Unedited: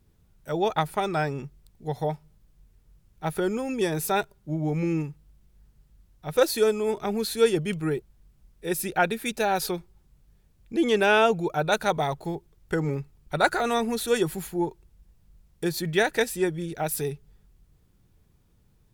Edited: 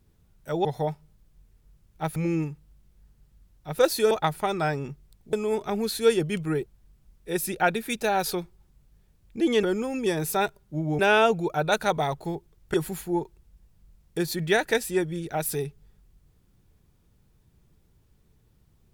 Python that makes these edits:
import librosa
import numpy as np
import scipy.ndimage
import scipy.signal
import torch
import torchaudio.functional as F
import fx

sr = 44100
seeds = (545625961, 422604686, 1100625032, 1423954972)

y = fx.edit(x, sr, fx.move(start_s=0.65, length_s=1.22, to_s=6.69),
    fx.move(start_s=3.38, length_s=1.36, to_s=10.99),
    fx.cut(start_s=12.74, length_s=1.46), tone=tone)